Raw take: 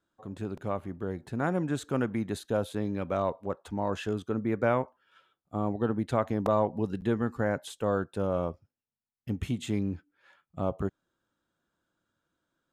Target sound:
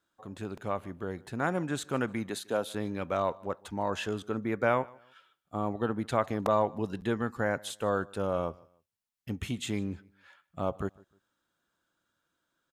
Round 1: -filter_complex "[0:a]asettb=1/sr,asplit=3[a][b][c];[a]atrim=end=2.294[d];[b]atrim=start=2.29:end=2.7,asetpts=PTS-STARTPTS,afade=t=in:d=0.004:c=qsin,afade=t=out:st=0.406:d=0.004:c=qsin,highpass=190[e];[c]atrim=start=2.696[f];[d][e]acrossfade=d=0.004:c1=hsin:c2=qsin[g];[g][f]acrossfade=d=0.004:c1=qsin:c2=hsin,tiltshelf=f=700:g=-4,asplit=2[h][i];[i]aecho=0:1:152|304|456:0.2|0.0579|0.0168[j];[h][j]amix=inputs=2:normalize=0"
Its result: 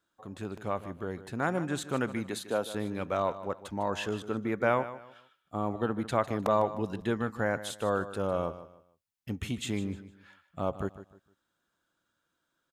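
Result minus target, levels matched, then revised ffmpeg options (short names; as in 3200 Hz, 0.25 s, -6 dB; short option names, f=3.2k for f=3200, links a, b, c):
echo-to-direct +10.5 dB
-filter_complex "[0:a]asettb=1/sr,asplit=3[a][b][c];[a]atrim=end=2.294[d];[b]atrim=start=2.29:end=2.7,asetpts=PTS-STARTPTS,afade=t=in:d=0.004:c=qsin,afade=t=out:st=0.406:d=0.004:c=qsin,highpass=190[e];[c]atrim=start=2.696[f];[d][e]acrossfade=d=0.004:c1=hsin:c2=qsin[g];[g][f]acrossfade=d=0.004:c1=qsin:c2=hsin,tiltshelf=f=700:g=-4,asplit=2[h][i];[i]aecho=0:1:152|304:0.0596|0.0173[j];[h][j]amix=inputs=2:normalize=0"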